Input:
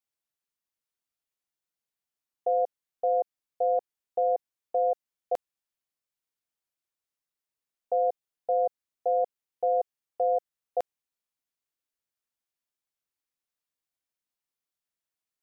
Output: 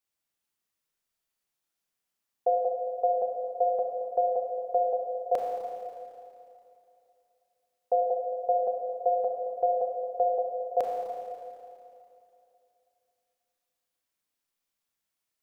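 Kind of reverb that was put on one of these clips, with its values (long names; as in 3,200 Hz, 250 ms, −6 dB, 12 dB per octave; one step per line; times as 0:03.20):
four-comb reverb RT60 2.7 s, combs from 28 ms, DRR 0 dB
level +2.5 dB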